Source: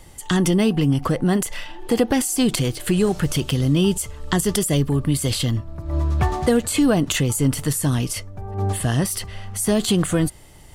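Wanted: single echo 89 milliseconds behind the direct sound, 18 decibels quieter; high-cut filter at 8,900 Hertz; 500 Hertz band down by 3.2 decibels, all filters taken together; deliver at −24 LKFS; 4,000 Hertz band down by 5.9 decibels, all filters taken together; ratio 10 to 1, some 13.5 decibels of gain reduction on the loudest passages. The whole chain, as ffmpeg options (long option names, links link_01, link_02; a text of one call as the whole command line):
ffmpeg -i in.wav -af "lowpass=8900,equalizer=frequency=500:width_type=o:gain=-4,equalizer=frequency=4000:width_type=o:gain=-8,acompressor=threshold=-29dB:ratio=10,aecho=1:1:89:0.126,volume=10dB" out.wav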